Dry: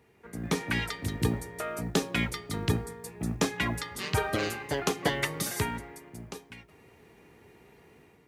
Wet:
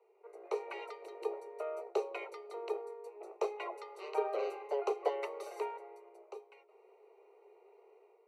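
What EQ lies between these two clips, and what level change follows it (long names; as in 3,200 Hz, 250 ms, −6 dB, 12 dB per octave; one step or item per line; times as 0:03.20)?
moving average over 26 samples
Butterworth high-pass 380 Hz 96 dB per octave
0.0 dB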